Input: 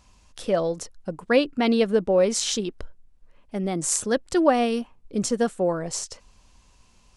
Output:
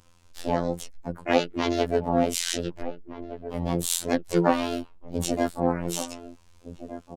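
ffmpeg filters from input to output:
-filter_complex "[0:a]asplit=4[a][b][c][d];[b]asetrate=22050,aresample=44100,atempo=2,volume=-4dB[e];[c]asetrate=55563,aresample=44100,atempo=0.793701,volume=-5dB[f];[d]asetrate=66075,aresample=44100,atempo=0.66742,volume=-6dB[g];[a][e][f][g]amix=inputs=4:normalize=0,asplit=2[h][i];[i]adelay=1516,volume=-12dB,highshelf=f=4k:g=-34.1[j];[h][j]amix=inputs=2:normalize=0,afftfilt=real='hypot(re,im)*cos(PI*b)':imag='0':win_size=2048:overlap=0.75,volume=-2dB"

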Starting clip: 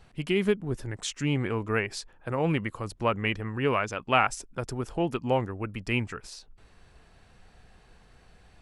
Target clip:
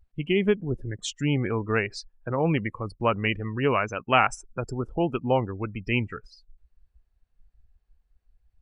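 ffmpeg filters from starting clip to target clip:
-af "afftdn=nr=31:nf=-37,volume=2.5dB"

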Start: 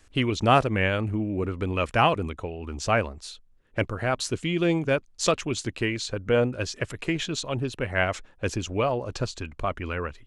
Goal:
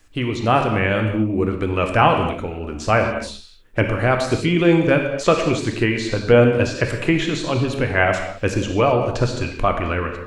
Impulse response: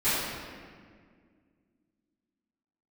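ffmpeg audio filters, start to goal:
-filter_complex "[0:a]dynaudnorm=f=490:g=3:m=8.5dB,asplit=2[a][b];[1:a]atrim=start_sample=2205,afade=t=out:st=0.32:d=0.01,atrim=end_sample=14553[c];[b][c]afir=irnorm=-1:irlink=0,volume=-16.5dB[d];[a][d]amix=inputs=2:normalize=0,acrossover=split=2600[e][f];[f]acompressor=threshold=-31dB:ratio=4:attack=1:release=60[g];[e][g]amix=inputs=2:normalize=0,acrusher=bits=11:mix=0:aa=0.000001"

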